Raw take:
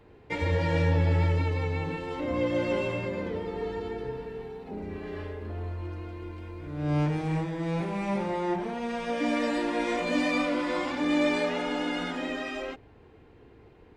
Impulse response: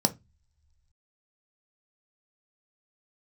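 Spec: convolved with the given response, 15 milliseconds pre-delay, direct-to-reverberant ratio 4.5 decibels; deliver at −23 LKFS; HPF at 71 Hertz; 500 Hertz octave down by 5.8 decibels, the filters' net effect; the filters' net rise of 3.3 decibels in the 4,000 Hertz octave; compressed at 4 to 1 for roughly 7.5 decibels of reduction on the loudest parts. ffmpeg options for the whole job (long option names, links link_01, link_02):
-filter_complex "[0:a]highpass=71,equalizer=frequency=500:width_type=o:gain=-7,equalizer=frequency=4000:width_type=o:gain=4.5,acompressor=threshold=-31dB:ratio=4,asplit=2[link_01][link_02];[1:a]atrim=start_sample=2205,adelay=15[link_03];[link_02][link_03]afir=irnorm=-1:irlink=0,volume=-14dB[link_04];[link_01][link_04]amix=inputs=2:normalize=0,volume=9dB"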